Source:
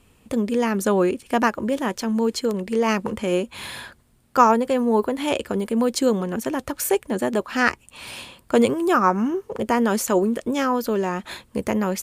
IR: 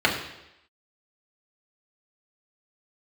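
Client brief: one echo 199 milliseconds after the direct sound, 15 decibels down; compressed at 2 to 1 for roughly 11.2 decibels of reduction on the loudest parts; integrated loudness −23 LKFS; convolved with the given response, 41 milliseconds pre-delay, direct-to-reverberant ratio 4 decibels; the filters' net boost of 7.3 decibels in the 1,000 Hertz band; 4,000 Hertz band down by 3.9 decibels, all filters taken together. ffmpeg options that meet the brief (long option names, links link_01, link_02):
-filter_complex "[0:a]equalizer=frequency=1000:width_type=o:gain=9,equalizer=frequency=4000:width_type=o:gain=-6,acompressor=threshold=-23dB:ratio=2,aecho=1:1:199:0.178,asplit=2[link_01][link_02];[1:a]atrim=start_sample=2205,adelay=41[link_03];[link_02][link_03]afir=irnorm=-1:irlink=0,volume=-22dB[link_04];[link_01][link_04]amix=inputs=2:normalize=0,volume=0.5dB"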